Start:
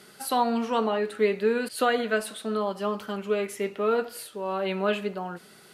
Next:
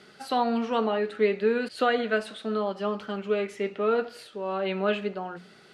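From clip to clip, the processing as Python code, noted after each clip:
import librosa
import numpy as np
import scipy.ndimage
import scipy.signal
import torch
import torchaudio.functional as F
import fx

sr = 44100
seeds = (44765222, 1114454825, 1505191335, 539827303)

y = scipy.signal.sosfilt(scipy.signal.butter(2, 4800.0, 'lowpass', fs=sr, output='sos'), x)
y = fx.peak_eq(y, sr, hz=1000.0, db=-4.5, octaves=0.21)
y = fx.hum_notches(y, sr, base_hz=60, count=3)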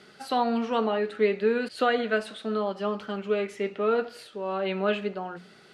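y = x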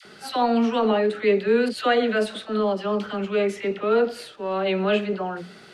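y = fx.transient(x, sr, attack_db=-6, sustain_db=0)
y = fx.dispersion(y, sr, late='lows', ms=53.0, hz=810.0)
y = fx.dynamic_eq(y, sr, hz=1300.0, q=0.72, threshold_db=-36.0, ratio=4.0, max_db=-3)
y = F.gain(torch.from_numpy(y), 7.0).numpy()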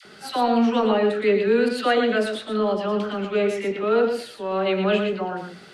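y = x + 10.0 ** (-6.5 / 20.0) * np.pad(x, (int(116 * sr / 1000.0), 0))[:len(x)]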